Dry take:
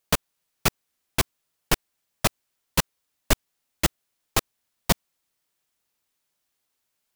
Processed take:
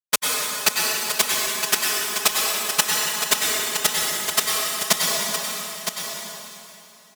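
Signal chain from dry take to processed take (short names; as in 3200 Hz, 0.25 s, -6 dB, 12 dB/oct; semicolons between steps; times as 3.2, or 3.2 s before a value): weighting filter A; gate -23 dBFS, range -36 dB; high shelf 4500 Hz +10 dB; comb 4.7 ms, depth 78%; on a send: echo 0.964 s -8 dB; on the sum: plate-style reverb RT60 3 s, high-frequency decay 0.9×, pre-delay 85 ms, DRR -3 dB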